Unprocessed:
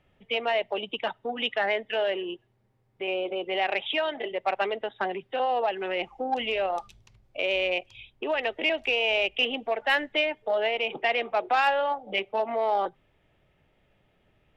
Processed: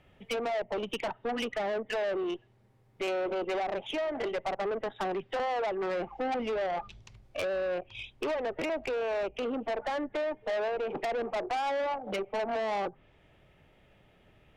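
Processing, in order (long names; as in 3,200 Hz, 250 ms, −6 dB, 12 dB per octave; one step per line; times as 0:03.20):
treble cut that deepens with the level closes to 690 Hz, closed at −24 dBFS
tube saturation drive 34 dB, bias 0.25
level +5.5 dB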